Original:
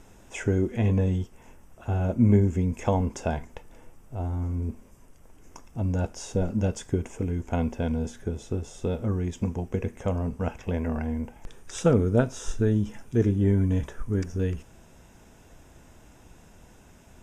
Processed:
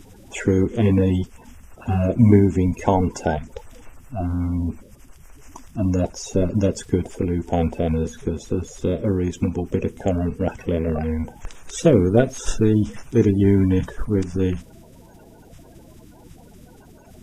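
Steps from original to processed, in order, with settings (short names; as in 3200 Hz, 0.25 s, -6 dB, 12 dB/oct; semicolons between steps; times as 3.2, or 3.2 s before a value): bin magnitudes rounded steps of 30 dB; gain +6.5 dB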